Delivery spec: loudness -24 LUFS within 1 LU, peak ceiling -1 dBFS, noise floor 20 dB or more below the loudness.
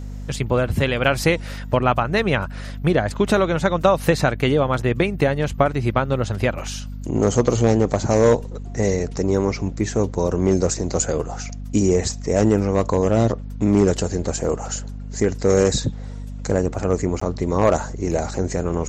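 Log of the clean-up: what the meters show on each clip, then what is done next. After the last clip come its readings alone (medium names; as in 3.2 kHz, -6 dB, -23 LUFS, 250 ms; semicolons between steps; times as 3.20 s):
dropouts 1; longest dropout 14 ms; hum 50 Hz; highest harmonic 250 Hz; hum level -29 dBFS; loudness -20.5 LUFS; peak level -2.5 dBFS; loudness target -24.0 LUFS
-> interpolate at 17.20 s, 14 ms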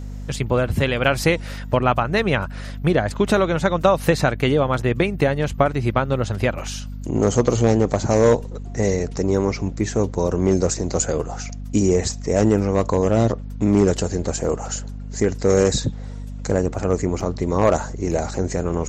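dropouts 0; hum 50 Hz; highest harmonic 250 Hz; hum level -29 dBFS
-> de-hum 50 Hz, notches 5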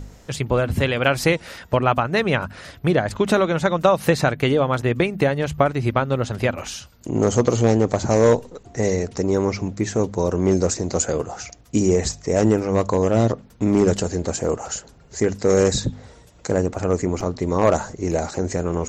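hum not found; loudness -21.0 LUFS; peak level -2.0 dBFS; loudness target -24.0 LUFS
-> trim -3 dB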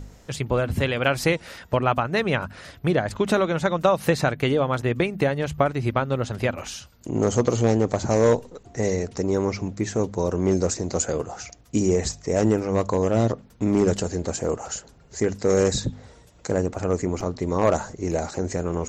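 loudness -24.0 LUFS; peak level -5.0 dBFS; noise floor -52 dBFS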